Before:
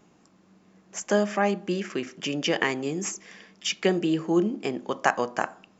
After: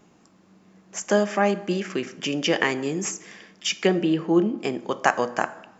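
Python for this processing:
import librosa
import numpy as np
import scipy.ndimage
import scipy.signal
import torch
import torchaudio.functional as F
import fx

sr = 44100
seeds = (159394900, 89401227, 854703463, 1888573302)

y = fx.lowpass(x, sr, hz=4100.0, slope=12, at=(3.87, 4.58))
y = fx.rev_plate(y, sr, seeds[0], rt60_s=1.1, hf_ratio=0.6, predelay_ms=0, drr_db=15.0)
y = y * 10.0 ** (2.5 / 20.0)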